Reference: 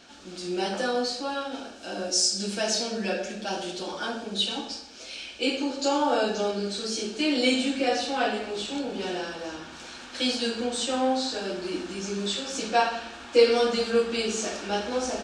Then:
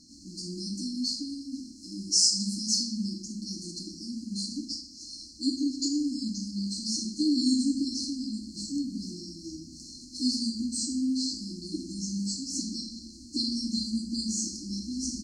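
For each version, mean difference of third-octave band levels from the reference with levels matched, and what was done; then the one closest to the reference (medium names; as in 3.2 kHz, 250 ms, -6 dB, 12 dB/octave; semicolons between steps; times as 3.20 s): 16.0 dB: brick-wall FIR band-stop 340–4100 Hz; trim +1.5 dB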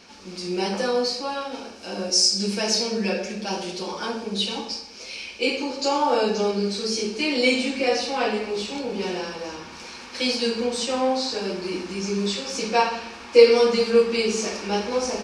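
2.0 dB: rippled EQ curve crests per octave 0.85, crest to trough 8 dB; trim +2.5 dB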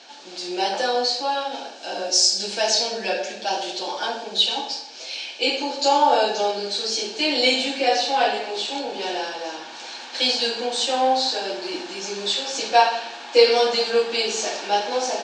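4.5 dB: cabinet simulation 450–7200 Hz, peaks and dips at 850 Hz +6 dB, 1.3 kHz -8 dB, 4.3 kHz +4 dB; trim +6 dB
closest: second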